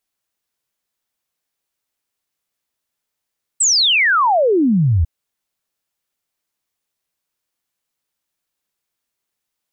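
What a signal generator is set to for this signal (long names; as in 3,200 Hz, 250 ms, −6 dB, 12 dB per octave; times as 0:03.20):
exponential sine sweep 8,300 Hz → 74 Hz 1.45 s −11 dBFS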